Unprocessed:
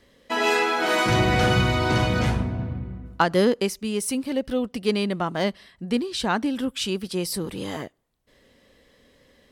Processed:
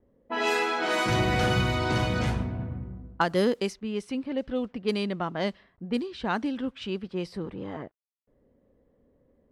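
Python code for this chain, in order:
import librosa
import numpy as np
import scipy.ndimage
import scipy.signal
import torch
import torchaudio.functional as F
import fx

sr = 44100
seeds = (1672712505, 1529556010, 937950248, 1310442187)

y = fx.quant_dither(x, sr, seeds[0], bits=10, dither='none')
y = fx.env_lowpass(y, sr, base_hz=550.0, full_db=-17.0)
y = y * librosa.db_to_amplitude(-4.5)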